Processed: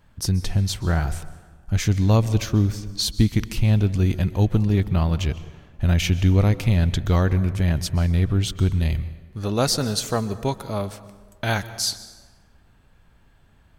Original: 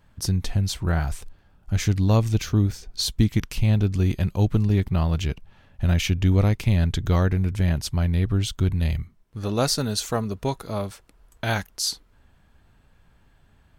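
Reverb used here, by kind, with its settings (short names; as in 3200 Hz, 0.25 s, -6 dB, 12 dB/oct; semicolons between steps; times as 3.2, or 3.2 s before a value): plate-style reverb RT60 1.4 s, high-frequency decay 0.6×, pre-delay 0.115 s, DRR 15 dB; gain +1.5 dB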